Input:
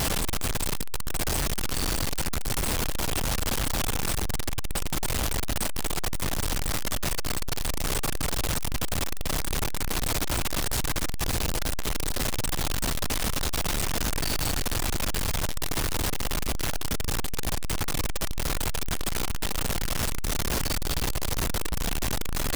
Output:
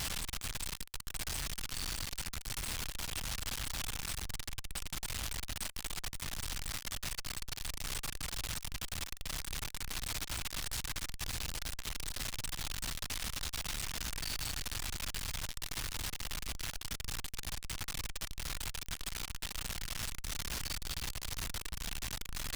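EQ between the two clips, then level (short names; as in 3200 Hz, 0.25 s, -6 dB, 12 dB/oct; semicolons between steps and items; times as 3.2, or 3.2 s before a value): passive tone stack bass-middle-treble 5-5-5; high shelf 7300 Hz -8 dB; +1.0 dB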